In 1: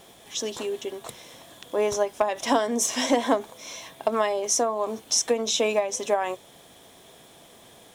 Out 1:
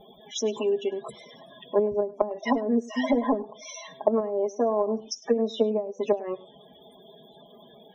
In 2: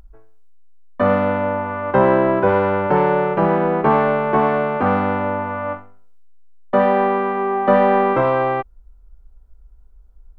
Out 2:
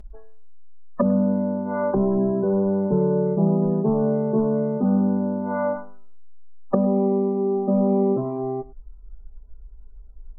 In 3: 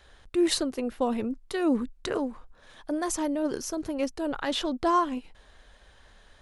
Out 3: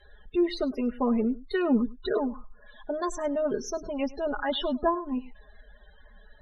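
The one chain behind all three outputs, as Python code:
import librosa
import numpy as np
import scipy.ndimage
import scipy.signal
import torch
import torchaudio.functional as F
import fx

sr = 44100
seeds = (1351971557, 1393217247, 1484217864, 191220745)

p1 = np.clip(x, -10.0 ** (-12.5 / 20.0), 10.0 ** (-12.5 / 20.0))
p2 = fx.spec_topn(p1, sr, count=32)
p3 = p2 + 0.9 * np.pad(p2, (int(4.8 * sr / 1000.0), 0))[:len(p2)]
p4 = fx.env_lowpass_down(p3, sr, base_hz=310.0, full_db=-15.5)
y = p4 + fx.echo_single(p4, sr, ms=102, db=-20.0, dry=0)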